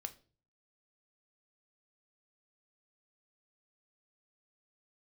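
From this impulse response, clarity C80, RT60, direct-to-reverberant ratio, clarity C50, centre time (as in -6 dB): 22.5 dB, 0.40 s, 8.5 dB, 17.0 dB, 5 ms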